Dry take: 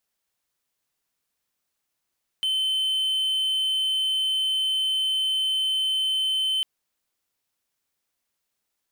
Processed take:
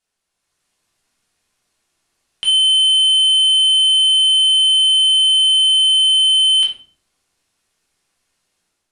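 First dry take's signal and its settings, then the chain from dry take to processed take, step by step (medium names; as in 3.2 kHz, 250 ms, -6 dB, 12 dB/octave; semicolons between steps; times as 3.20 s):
tone triangle 3.07 kHz -19.5 dBFS 4.20 s
steep low-pass 11 kHz 36 dB/octave; level rider gain up to 8 dB; simulated room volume 470 m³, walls furnished, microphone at 3.3 m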